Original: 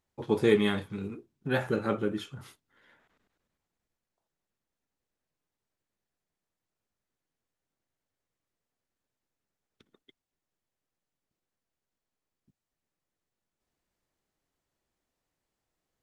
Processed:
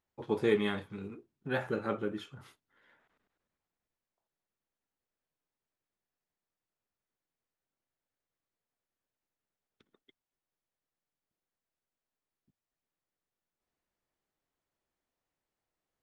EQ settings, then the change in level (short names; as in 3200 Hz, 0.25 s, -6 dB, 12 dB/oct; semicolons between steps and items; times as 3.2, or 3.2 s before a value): low shelf 370 Hz -5.5 dB; high shelf 3900 Hz -8.5 dB; -2.0 dB